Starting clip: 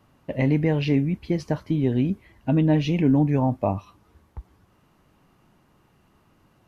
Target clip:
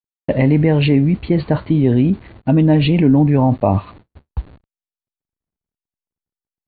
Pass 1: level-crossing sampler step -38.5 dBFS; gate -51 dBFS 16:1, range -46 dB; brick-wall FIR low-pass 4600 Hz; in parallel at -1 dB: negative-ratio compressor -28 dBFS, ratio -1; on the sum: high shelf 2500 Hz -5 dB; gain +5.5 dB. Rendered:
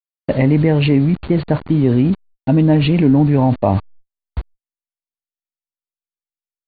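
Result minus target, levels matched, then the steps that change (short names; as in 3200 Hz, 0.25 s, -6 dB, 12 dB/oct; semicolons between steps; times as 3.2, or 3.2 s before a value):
level-crossing sampler: distortion +10 dB
change: level-crossing sampler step -50 dBFS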